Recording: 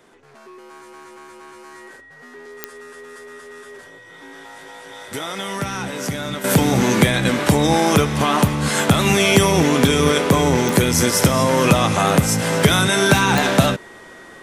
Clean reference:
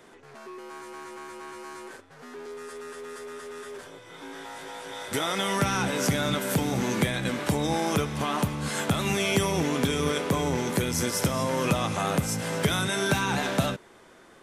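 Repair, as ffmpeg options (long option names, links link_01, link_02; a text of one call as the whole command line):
ffmpeg -i in.wav -af "adeclick=threshold=4,bandreject=frequency=1900:width=30,asetnsamples=nb_out_samples=441:pad=0,asendcmd='6.44 volume volume -10.5dB',volume=0dB" out.wav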